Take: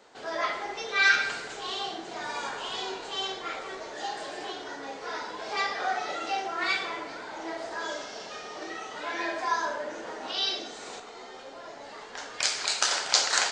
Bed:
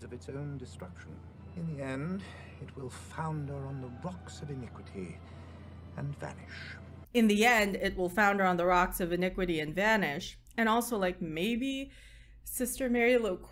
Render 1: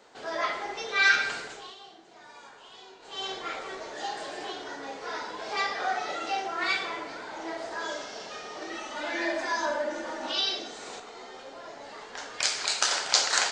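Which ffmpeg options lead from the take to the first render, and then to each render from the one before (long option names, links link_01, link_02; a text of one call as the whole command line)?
ffmpeg -i in.wav -filter_complex "[0:a]asettb=1/sr,asplit=3[link_01][link_02][link_03];[link_01]atrim=end=8.724[link_04];[link_02]atrim=start=8.72:end=10.41,asetpts=PTS-STARTPTS,afade=type=in:duration=0.004:curve=qsin,afade=type=out:start_time=1.686:duration=0.004:curve=qsin,aecho=1:1:3.4:0.91,atrim=end_sample=74529[link_05];[link_03]atrim=start=10.406[link_06];[link_04][link_05]acrossfade=duration=0.004:curve1=hsin:curve2=qsin[link_07];[link_07][link_06]acrossfade=duration=0.004:curve1=qsin:curve2=hsin,asplit=3[link_08][link_09][link_10];[link_08]atrim=end=1.75,asetpts=PTS-STARTPTS,afade=type=out:start_time=1.4:duration=0.35:silence=0.177828[link_11];[link_09]atrim=start=1.75:end=2.99,asetpts=PTS-STARTPTS,volume=-15dB[link_12];[link_10]atrim=start=2.99,asetpts=PTS-STARTPTS,afade=type=in:duration=0.35:silence=0.177828[link_13];[link_11][link_12][link_13]concat=n=3:v=0:a=1" out.wav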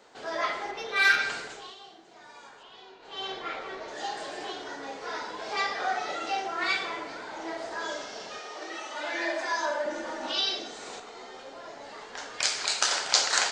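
ffmpeg -i in.wav -filter_complex "[0:a]asettb=1/sr,asplit=3[link_01][link_02][link_03];[link_01]atrim=end=0.714[link_04];[link_02]atrim=start=0.71:end=1.19,asetpts=PTS-STARTPTS,afade=type=in:duration=0.004:curve=qsin,afade=type=out:start_time=0.476:duration=0.004:curve=qsin,adynamicsmooth=sensitivity=2:basefreq=5400[link_05];[link_03]atrim=start=1.186[link_06];[link_04][link_05]acrossfade=duration=0.004:curve1=hsin:curve2=qsin[link_07];[link_07][link_06]acrossfade=duration=0.004:curve1=qsin:curve2=hsin,asettb=1/sr,asplit=3[link_08][link_09][link_10];[link_08]atrim=end=2.634[link_11];[link_09]atrim=start=2.63:end=3.88,asetpts=PTS-STARTPTS,afade=type=in:duration=0.004:curve=qsin,afade=type=out:start_time=1.246:duration=0.004:curve=qsin,lowpass=4300[link_12];[link_10]atrim=start=3.876[link_13];[link_11][link_12]acrossfade=duration=0.004:curve1=hsin:curve2=qsin[link_14];[link_14][link_13]acrossfade=duration=0.004:curve1=qsin:curve2=hsin,asettb=1/sr,asplit=3[link_15][link_16][link_17];[link_15]atrim=end=8.394[link_18];[link_16]atrim=start=8.39:end=9.86,asetpts=PTS-STARTPTS,afade=type=in:duration=0.004:curve=qsin,afade=type=out:start_time=1.466:duration=0.004:curve=qsin,highpass=360[link_19];[link_17]atrim=start=9.856[link_20];[link_18][link_19]acrossfade=duration=0.004:curve1=hsin:curve2=qsin[link_21];[link_21][link_20]acrossfade=duration=0.004:curve1=qsin:curve2=hsin" out.wav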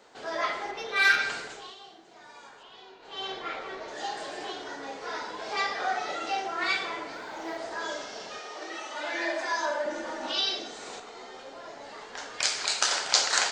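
ffmpeg -i in.wav -filter_complex "[0:a]asettb=1/sr,asplit=3[link_01][link_02][link_03];[link_01]atrim=end=7.134[link_04];[link_02]atrim=start=7.13:end=7.58,asetpts=PTS-STARTPTS,afade=type=in:duration=0.004:curve=qsin,afade=type=out:start_time=0.446:duration=0.004:curve=qsin,acrusher=bits=9:mode=log:mix=0:aa=0.000001[link_05];[link_03]atrim=start=7.576[link_06];[link_04][link_05]acrossfade=duration=0.004:curve1=hsin:curve2=qsin[link_07];[link_07][link_06]acrossfade=duration=0.004:curve1=qsin:curve2=hsin" out.wav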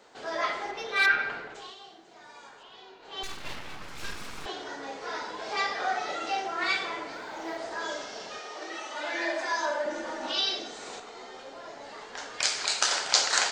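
ffmpeg -i in.wav -filter_complex "[0:a]asplit=3[link_01][link_02][link_03];[link_01]afade=type=out:start_time=1.05:duration=0.02[link_04];[link_02]lowpass=2100,afade=type=in:start_time=1.05:duration=0.02,afade=type=out:start_time=1.54:duration=0.02[link_05];[link_03]afade=type=in:start_time=1.54:duration=0.02[link_06];[link_04][link_05][link_06]amix=inputs=3:normalize=0,asettb=1/sr,asplit=3[link_07][link_08][link_09];[link_07]atrim=end=3.234[link_10];[link_08]atrim=start=3.23:end=4.46,asetpts=PTS-STARTPTS,afade=type=in:duration=0.004:curve=qsin,afade=type=out:start_time=1.226:duration=0.004:curve=qsin,aeval=exprs='abs(val(0))':channel_layout=same[link_11];[link_09]atrim=start=4.456[link_12];[link_10][link_11]acrossfade=duration=0.004:curve1=hsin:curve2=qsin[link_13];[link_13][link_12]acrossfade=duration=0.004:curve1=qsin:curve2=hsin" out.wav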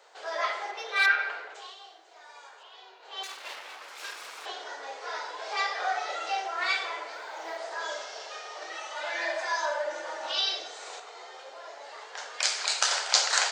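ffmpeg -i in.wav -af "highpass=frequency=480:width=0.5412,highpass=frequency=480:width=1.3066" out.wav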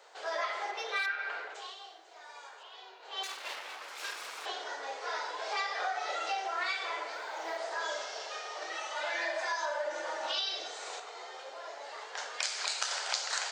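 ffmpeg -i in.wav -af "acompressor=threshold=-30dB:ratio=10" out.wav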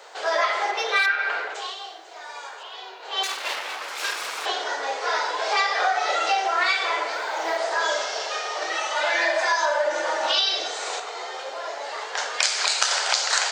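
ffmpeg -i in.wav -af "volume=12dB,alimiter=limit=-3dB:level=0:latency=1" out.wav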